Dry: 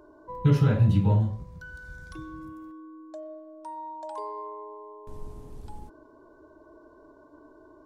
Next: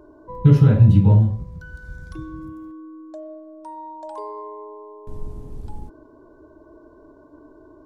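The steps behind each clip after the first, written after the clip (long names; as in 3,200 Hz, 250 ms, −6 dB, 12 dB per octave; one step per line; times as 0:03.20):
low-shelf EQ 490 Hz +9 dB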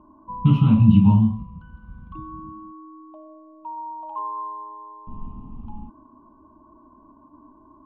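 low-pass that shuts in the quiet parts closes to 1,200 Hz, open at −10 dBFS
drawn EQ curve 150 Hz 0 dB, 220 Hz +13 dB, 460 Hz −16 dB, 1,100 Hz +14 dB, 1,700 Hz −16 dB, 2,800 Hz +14 dB, 5,200 Hz −14 dB
level −4.5 dB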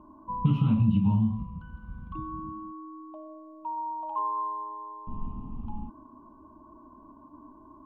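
downward compressor 6 to 1, threshold −20 dBFS, peak gain reduction 11.5 dB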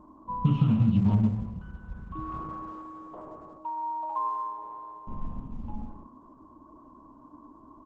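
single-tap delay 170 ms −10 dB
Opus 12 kbit/s 48,000 Hz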